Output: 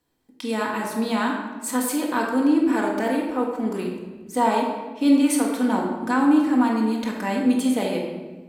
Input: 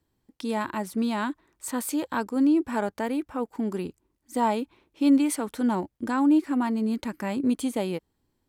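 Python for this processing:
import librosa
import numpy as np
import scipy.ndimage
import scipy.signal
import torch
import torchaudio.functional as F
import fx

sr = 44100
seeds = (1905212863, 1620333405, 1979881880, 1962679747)

y = fx.low_shelf(x, sr, hz=240.0, db=-11.0)
y = fx.room_shoebox(y, sr, seeds[0], volume_m3=950.0, walls='mixed', distance_m=1.9)
y = F.gain(torch.from_numpy(y), 3.0).numpy()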